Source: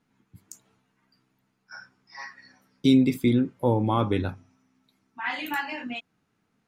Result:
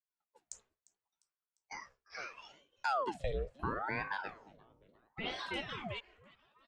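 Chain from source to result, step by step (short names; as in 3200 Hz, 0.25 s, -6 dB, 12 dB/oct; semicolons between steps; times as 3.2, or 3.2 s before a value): elliptic band-pass 200–8100 Hz; expander -51 dBFS; compressor 2:1, threshold -43 dBFS, peak gain reduction 15 dB; on a send: frequency-shifting echo 0.35 s, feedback 49%, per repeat -61 Hz, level -22 dB; on the sum: ring modulator with a swept carrier 760 Hz, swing 75%, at 0.74 Hz; gain +2 dB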